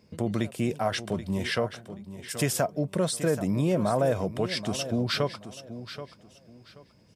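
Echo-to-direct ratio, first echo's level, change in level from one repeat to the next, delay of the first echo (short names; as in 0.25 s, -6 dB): -12.0 dB, -12.5 dB, -12.5 dB, 0.78 s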